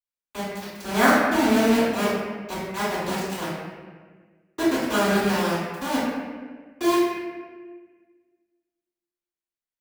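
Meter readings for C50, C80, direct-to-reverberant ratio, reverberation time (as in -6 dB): -2.0 dB, 0.5 dB, -16.5 dB, 1.5 s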